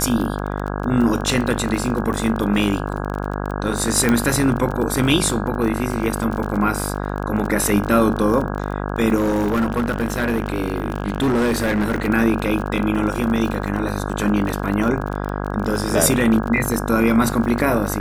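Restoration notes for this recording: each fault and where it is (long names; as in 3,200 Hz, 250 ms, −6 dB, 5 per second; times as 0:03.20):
mains buzz 50 Hz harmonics 33 −25 dBFS
surface crackle 31 per second −24 dBFS
0:04.09: click −5 dBFS
0:09.15–0:12.08: clipping −15 dBFS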